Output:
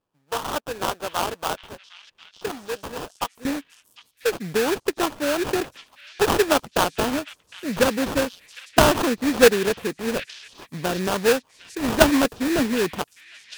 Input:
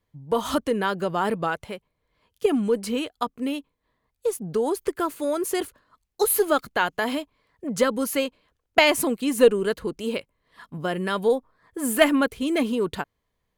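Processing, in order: HPF 770 Hz 12 dB/oct, from 3.45 s 110 Hz; sample-rate reducer 2100 Hz, jitter 20%; delay with a stepping band-pass 0.757 s, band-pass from 2600 Hz, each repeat 0.7 oct, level -12 dB; gain +2 dB

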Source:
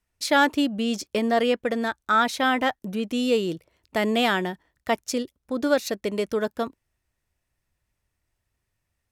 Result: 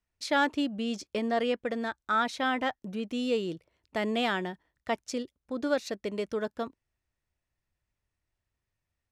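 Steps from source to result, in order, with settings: Bessel low-pass 6800 Hz, order 2; gain -6.5 dB

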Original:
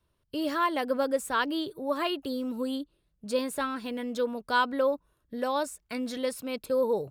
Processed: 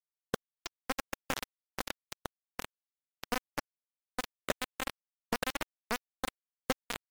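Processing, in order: 1.74–2.72 zero-crossing step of -33.5 dBFS; 3.81–4.43 resonator 430 Hz, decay 0.27 s, harmonics all, mix 70%; limiter -22.5 dBFS, peak gain reduction 7.5 dB; Gaussian blur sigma 4.7 samples; tilt shelf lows +4 dB, about 810 Hz; compressor 5:1, threshold -41 dBFS, peak gain reduction 14.5 dB; dynamic EQ 290 Hz, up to -6 dB, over -56 dBFS, Q 3.6; echo 0.759 s -13.5 dB; bit-crush 6-bit; gain +11.5 dB; MP3 96 kbps 44100 Hz

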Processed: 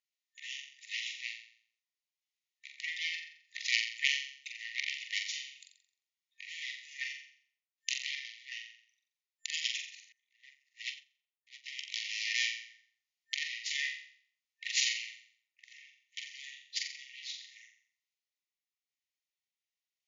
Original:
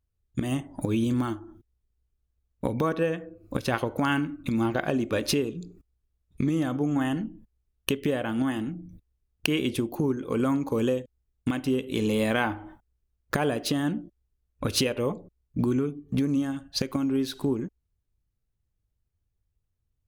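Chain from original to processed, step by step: self-modulated delay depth 0.58 ms; high shelf 4900 Hz -3.5 dB; in parallel at +1 dB: limiter -20 dBFS, peak gain reduction 9 dB; on the sum: FFT band-pass 1800–7200 Hz; random-step tremolo 2.7 Hz, depth 75%; on a send: flutter echo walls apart 7.5 m, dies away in 0.55 s; 10.12–11.66 on the sum: upward expander 2.5:1, over -49 dBFS

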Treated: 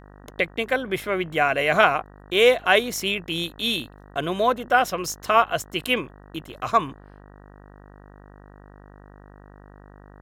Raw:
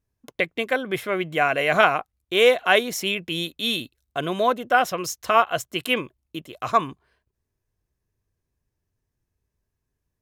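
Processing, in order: buzz 50 Hz, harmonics 38, -47 dBFS -4 dB/oct

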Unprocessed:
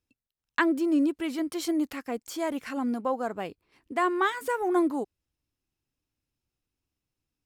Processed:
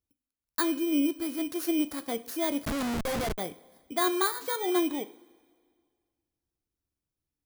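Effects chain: FFT order left unsorted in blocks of 16 samples; vocal rider within 4 dB 2 s; two-slope reverb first 0.44 s, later 1.9 s, from -16 dB, DRR 11 dB; 2.65–3.38 Schmitt trigger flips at -30 dBFS; gain -2 dB

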